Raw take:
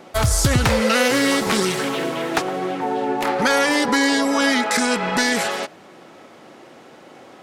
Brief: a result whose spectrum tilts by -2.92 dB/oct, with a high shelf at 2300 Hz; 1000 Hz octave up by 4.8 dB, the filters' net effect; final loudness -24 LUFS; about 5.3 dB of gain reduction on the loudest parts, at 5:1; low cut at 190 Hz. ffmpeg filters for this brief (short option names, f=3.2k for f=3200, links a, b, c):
-af "highpass=190,equalizer=f=1k:t=o:g=4.5,highshelf=f=2.3k:g=8.5,acompressor=threshold=-16dB:ratio=5,volume=-5dB"